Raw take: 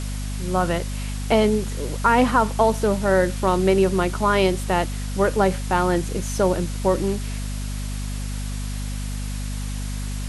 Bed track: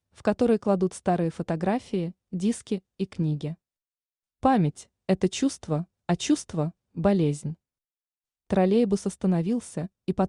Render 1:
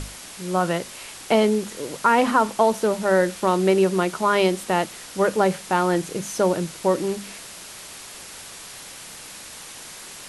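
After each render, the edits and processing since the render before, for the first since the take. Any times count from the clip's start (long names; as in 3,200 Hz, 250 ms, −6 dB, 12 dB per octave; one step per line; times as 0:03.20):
mains-hum notches 50/100/150/200/250 Hz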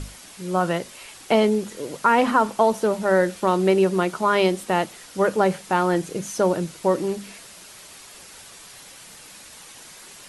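broadband denoise 6 dB, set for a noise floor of −40 dBFS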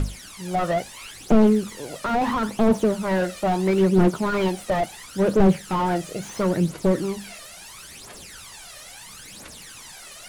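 phase shifter 0.74 Hz, delay 1.7 ms, feedback 70%
slew-rate limiting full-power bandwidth 75 Hz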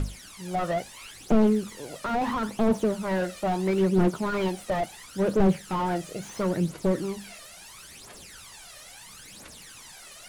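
level −4.5 dB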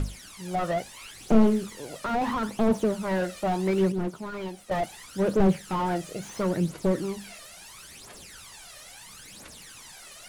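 0:01.15–0:01.66: flutter between parallel walls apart 5.4 metres, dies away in 0.23 s
0:03.92–0:04.71: clip gain −8 dB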